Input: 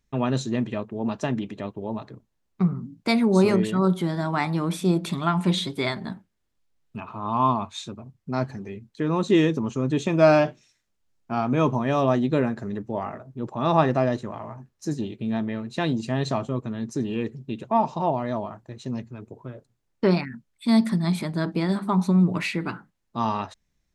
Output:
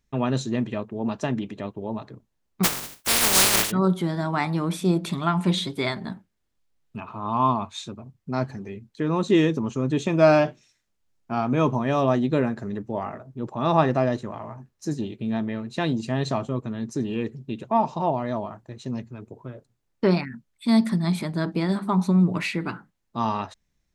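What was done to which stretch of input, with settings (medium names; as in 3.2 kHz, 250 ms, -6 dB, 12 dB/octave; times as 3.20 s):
2.63–3.70 s: spectral contrast reduction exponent 0.12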